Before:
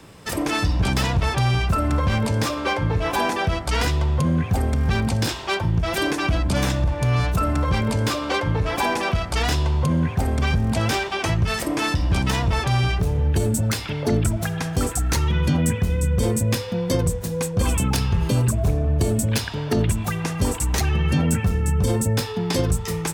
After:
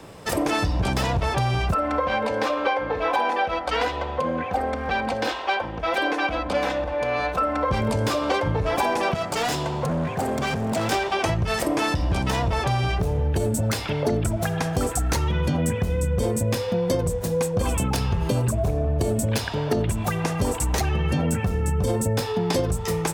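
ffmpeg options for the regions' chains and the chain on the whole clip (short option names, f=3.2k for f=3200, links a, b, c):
-filter_complex "[0:a]asettb=1/sr,asplit=3[a][b][c];[a]atrim=end=1.744[d];[b]atrim=start=1.74:end=7.71,asetpts=PTS-STARTPTS,afade=t=in:d=0.004:c=qsin,afade=t=out:st=5.966:d=0.004:c=qsin,acrossover=split=340 4200:gain=0.178 1 0.178[e][f][g];[e][f][g]amix=inputs=3:normalize=0,aecho=1:1:3.9:0.53,atrim=end_sample=263277[h];[c]atrim=start=7.706[i];[d][h]acrossfade=d=0.004:c1=hsin:c2=qsin[j];[j][i]acrossfade=d=0.004:c1=qsin:c2=hsin,asettb=1/sr,asplit=3[k][l][m];[k]atrim=end=9.144[n];[l]atrim=start=9.14:end=10.92,asetpts=PTS-STARTPTS,afade=t=in:d=0.004:c=qsin,afade=t=out:st=1.776:d=0.004:c=qsin,highpass=f=120:w=0.5412,highpass=f=120:w=1.3066,equalizer=f=7.3k:w=4.2:g=5.5,volume=24dB,asoftclip=hard,volume=-24dB[o];[m]atrim=start=10.916[p];[n][o]acrossfade=d=0.004:c1=hsin:c2=qsin[q];[q][p]acrossfade=d=0.004:c1=qsin:c2=hsin,equalizer=f=620:t=o:w=1.5:g=7,acompressor=threshold=-19dB:ratio=6"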